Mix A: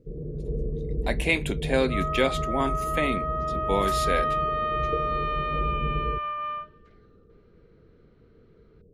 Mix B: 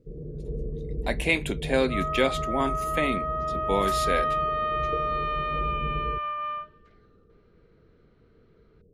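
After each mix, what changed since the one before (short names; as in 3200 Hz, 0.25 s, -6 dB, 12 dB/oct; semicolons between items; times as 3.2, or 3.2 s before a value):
first sound -3.0 dB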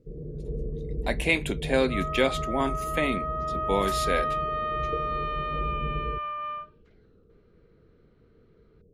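reverb: off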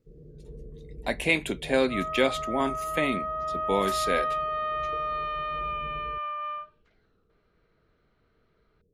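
first sound -11.0 dB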